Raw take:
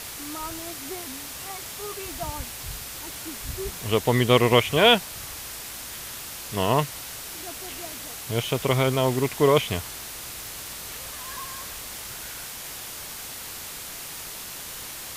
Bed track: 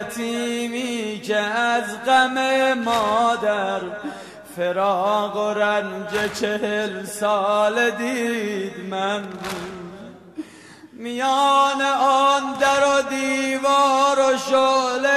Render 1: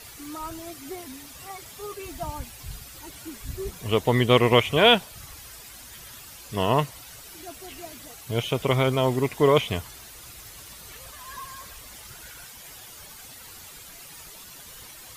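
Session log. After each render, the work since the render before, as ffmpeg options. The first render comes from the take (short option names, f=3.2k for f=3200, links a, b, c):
-af "afftdn=nr=11:nf=-38"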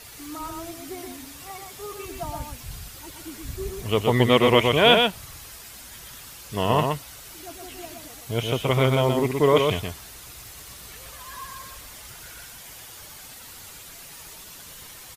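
-af "aecho=1:1:123:0.631"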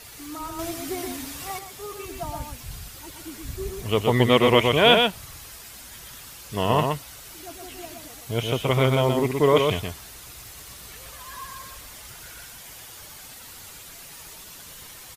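-filter_complex "[0:a]asplit=3[a][b][c];[a]atrim=end=0.592[d];[b]atrim=start=0.588:end=1.592,asetpts=PTS-STARTPTS,volume=5.5dB[e];[c]atrim=start=1.588[f];[d][e]acrossfade=d=0.004:c1=hsin:c2=hsin[g];[g][f]acrossfade=d=0.004:c1=hsin:c2=hsin"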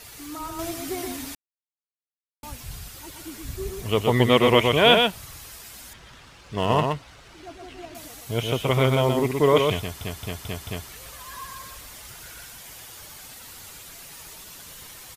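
-filter_complex "[0:a]asettb=1/sr,asplit=3[a][b][c];[a]atrim=end=5.934[d];[b]atrim=start=5.93:end=7.95,asetpts=PTS-STARTPTS,afade=t=in:d=0.004:c=qsin,afade=t=out:st=2.016:d=0.004:c=qsin,adynamicsmooth=sensitivity=6:basefreq=3.3k[e];[c]atrim=start=7.946[f];[d][e]acrossfade=d=0.004:c1=hsin:c2=qsin[g];[g][f]acrossfade=d=0.004:c1=qsin:c2=hsin,asplit=8[h][i][j][k][l][m][n][o];[h]atrim=end=1.35,asetpts=PTS-STARTPTS,afade=t=out:st=1.346:d=0.004:c=hsin[p];[i]atrim=start=1.35:end=2.43,asetpts=PTS-STARTPTS,volume=0[q];[j]atrim=start=2.43:end=10.012,asetpts=PTS-STARTPTS,afade=t=in:d=0.004:c=hsin[r];[k]atrim=start=9.788:end=10.012[s];[l]atrim=start=9.788:end=10.012[t];[m]atrim=start=9.788:end=10.012[u];[n]atrim=start=9.788:end=10.012[v];[o]atrim=start=10.888[w];[p][q][r]concat=n=3:v=0:a=1[x];[x][s]acrossfade=d=0.004:c1=hsin:c2=hsin[y];[y][t]acrossfade=d=0.004:c1=hsin:c2=hsin[z];[z][u]acrossfade=d=0.004:c1=hsin:c2=hsin[aa];[aa][v]acrossfade=d=0.004:c1=hsin:c2=hsin[ab];[ab][w]acrossfade=d=0.004:c1=hsin:c2=hsin"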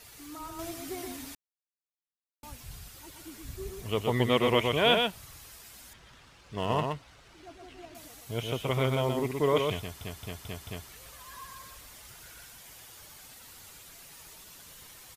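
-af "volume=-7.5dB"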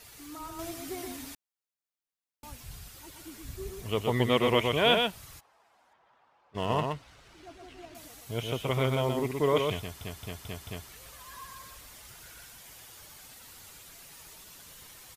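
-filter_complex "[0:a]asplit=3[a][b][c];[a]afade=t=out:st=5.39:d=0.02[d];[b]bandpass=f=820:t=q:w=2.4,afade=t=in:st=5.39:d=0.02,afade=t=out:st=6.54:d=0.02[e];[c]afade=t=in:st=6.54:d=0.02[f];[d][e][f]amix=inputs=3:normalize=0"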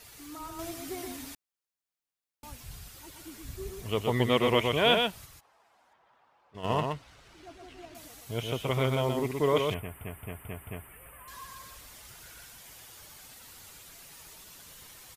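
-filter_complex "[0:a]asplit=3[a][b][c];[a]afade=t=out:st=5.25:d=0.02[d];[b]acompressor=threshold=-55dB:ratio=1.5:attack=3.2:release=140:knee=1:detection=peak,afade=t=in:st=5.25:d=0.02,afade=t=out:st=6.63:d=0.02[e];[c]afade=t=in:st=6.63:d=0.02[f];[d][e][f]amix=inputs=3:normalize=0,asettb=1/sr,asplit=3[g][h][i];[g]atrim=end=9.744[j];[h]atrim=start=9.74:end=11.28,asetpts=PTS-STARTPTS,afade=t=in:d=0.004:c=qsin,afade=t=out:st=1.536:d=0.004:c=qsin,asuperstop=centerf=5100:order=8:qfactor=0.82[k];[i]atrim=start=11.276[l];[j][k]acrossfade=d=0.004:c1=hsin:c2=qsin[m];[m][l]acrossfade=d=0.004:c1=qsin:c2=hsin"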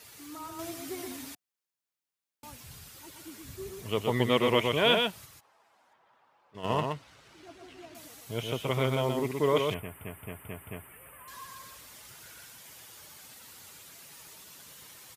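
-af "highpass=100,bandreject=f=720:w=20"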